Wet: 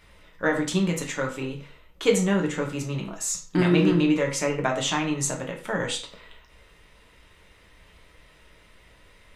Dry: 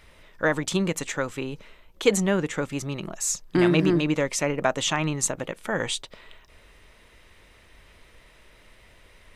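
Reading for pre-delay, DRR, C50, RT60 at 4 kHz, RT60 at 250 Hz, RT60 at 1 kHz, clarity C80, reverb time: 6 ms, 0.0 dB, 9.0 dB, 0.35 s, 0.40 s, 0.40 s, 13.0 dB, 0.40 s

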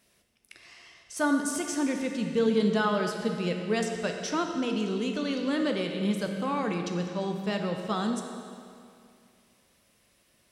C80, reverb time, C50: 5.5 dB, 2.4 s, 4.5 dB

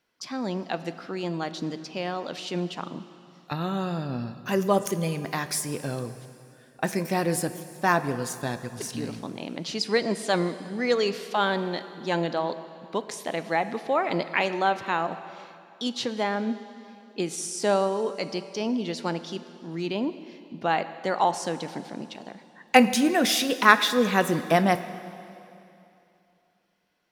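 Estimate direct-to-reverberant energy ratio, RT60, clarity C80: 11.5 dB, 2.8 s, 13.0 dB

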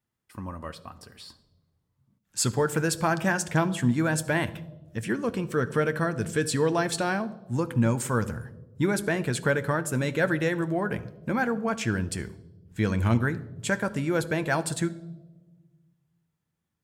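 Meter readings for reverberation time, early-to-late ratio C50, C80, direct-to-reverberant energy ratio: 1.2 s, 17.0 dB, 19.5 dB, 10.0 dB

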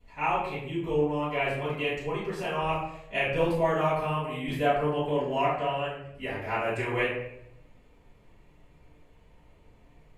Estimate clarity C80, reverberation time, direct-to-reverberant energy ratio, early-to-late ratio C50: 5.5 dB, 0.75 s, −13.0 dB, 2.0 dB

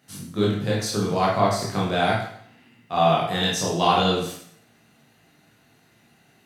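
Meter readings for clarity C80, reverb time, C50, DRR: 6.0 dB, 0.65 s, 2.0 dB, −5.0 dB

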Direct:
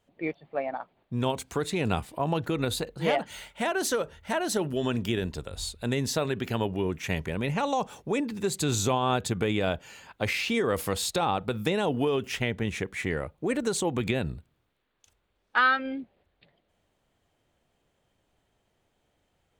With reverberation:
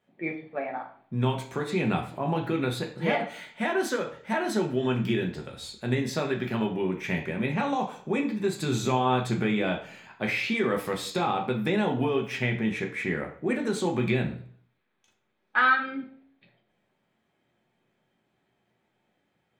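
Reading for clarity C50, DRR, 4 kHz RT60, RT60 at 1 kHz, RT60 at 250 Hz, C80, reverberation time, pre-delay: 10.0 dB, 1.0 dB, 0.45 s, 0.50 s, 0.60 s, 13.0 dB, 0.50 s, 3 ms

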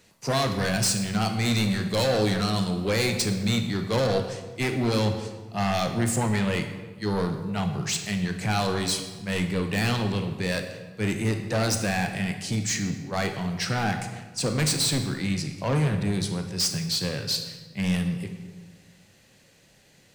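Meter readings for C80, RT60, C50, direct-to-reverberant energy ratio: 9.5 dB, 1.3 s, 7.5 dB, 5.5 dB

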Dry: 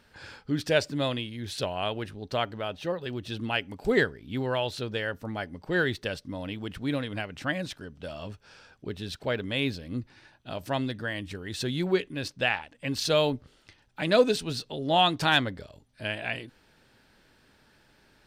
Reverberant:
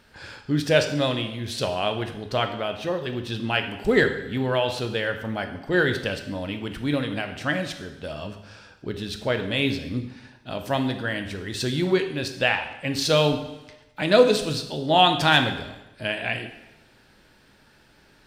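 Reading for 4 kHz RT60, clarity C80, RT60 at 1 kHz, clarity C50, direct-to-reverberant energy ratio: 0.90 s, 11.5 dB, 1.0 s, 9.0 dB, 6.0 dB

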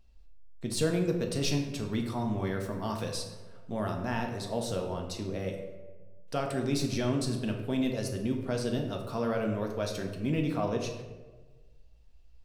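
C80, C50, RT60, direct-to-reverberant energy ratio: 8.0 dB, 5.5 dB, 1.3 s, 1.5 dB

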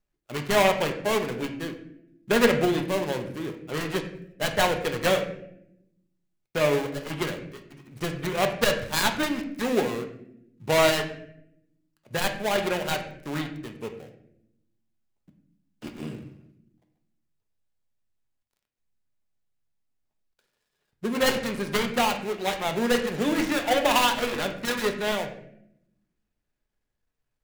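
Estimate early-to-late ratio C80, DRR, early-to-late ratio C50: 11.5 dB, 4.0 dB, 9.0 dB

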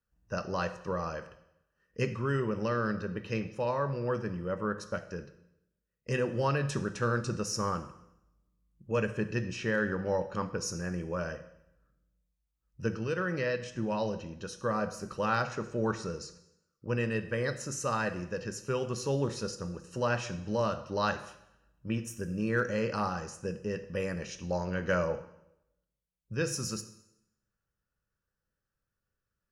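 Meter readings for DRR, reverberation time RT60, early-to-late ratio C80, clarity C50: 9.5 dB, 0.80 s, 15.5 dB, 13.0 dB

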